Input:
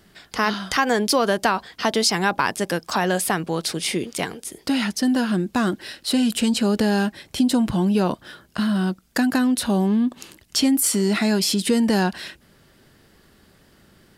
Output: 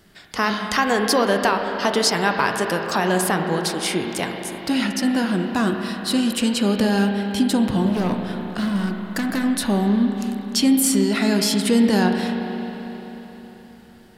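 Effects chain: 7.86–9.44 s: hard clipper -20 dBFS, distortion -18 dB; spring tank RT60 4 s, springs 30/38 ms, chirp 35 ms, DRR 3.5 dB

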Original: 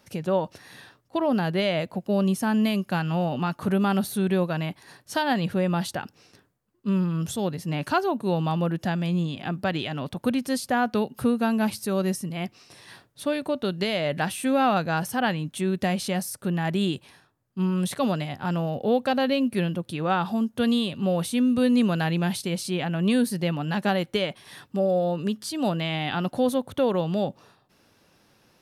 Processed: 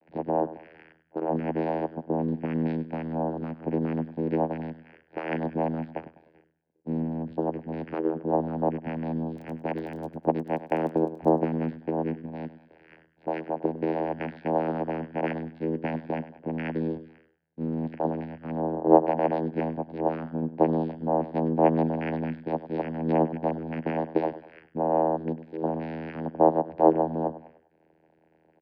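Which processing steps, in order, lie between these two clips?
in parallel at -7 dB: saturation -22 dBFS, distortion -13 dB; on the sum: frequency shift +46 Hz; cascade formant filter e; vocoder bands 8, saw 80.5 Hz; 9.30–11.29 s: crackle 11 per s -44 dBFS; on a send: feedback delay 100 ms, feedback 38%, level -14.5 dB; on the sum: trim +7 dB

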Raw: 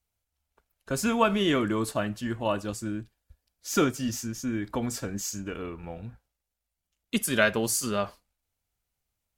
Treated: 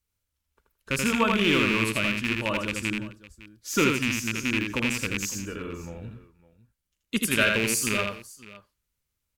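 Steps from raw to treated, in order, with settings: rattle on loud lows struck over -29 dBFS, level -14 dBFS; peaking EQ 730 Hz -13.5 dB 0.35 oct; multi-tap echo 81/172/558 ms -3.5/-19.5/-19 dB

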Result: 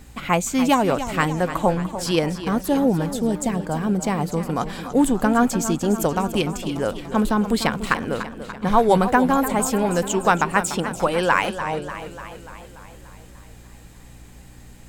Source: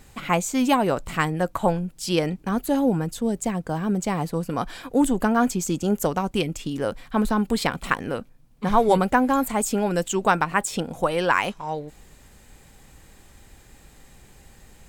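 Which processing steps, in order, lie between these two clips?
hum 60 Hz, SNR 24 dB; modulated delay 293 ms, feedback 61%, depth 97 cents, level -11.5 dB; trim +2 dB

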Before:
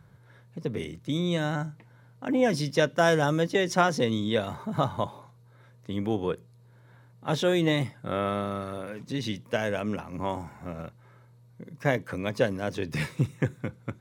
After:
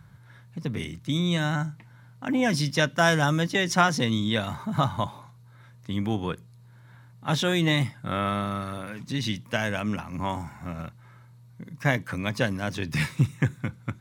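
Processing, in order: peaking EQ 460 Hz -11 dB 1.1 oct; trim +5 dB

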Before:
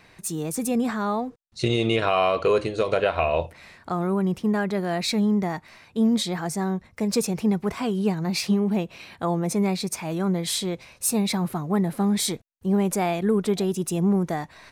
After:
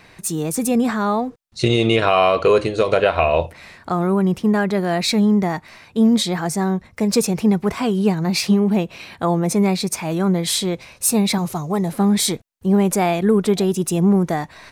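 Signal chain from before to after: 11.38–11.92 s: fifteen-band graphic EQ 250 Hz -10 dB, 1.6 kHz -7 dB, 6.3 kHz +11 dB; trim +6 dB

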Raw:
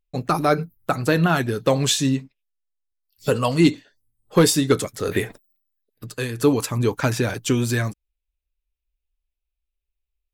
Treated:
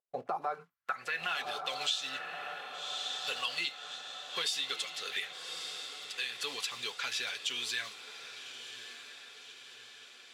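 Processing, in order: block-companded coder 5-bit; band-pass sweep 640 Hz -> 3.3 kHz, 0.25–1.43 s; vibrato 11 Hz 8.3 cents; on a send: echo that smears into a reverb 1168 ms, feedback 56%, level -13.5 dB; on the sum: compression 6:1, threshold -32 dBFS, peak gain reduction 12 dB; in parallel at 0 dB: peak limiter -30 dBFS, peak gain reduction 11.5 dB; on the sum: bass shelf 380 Hz -11.5 dB; comb of notches 310 Hz

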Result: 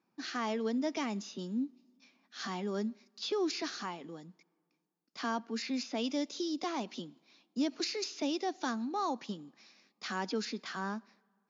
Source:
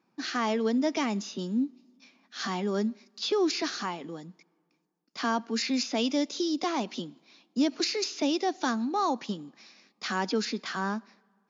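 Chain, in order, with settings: 5.39–6.04 s: treble shelf 4.3 kHz -5.5 dB; trim -6.5 dB

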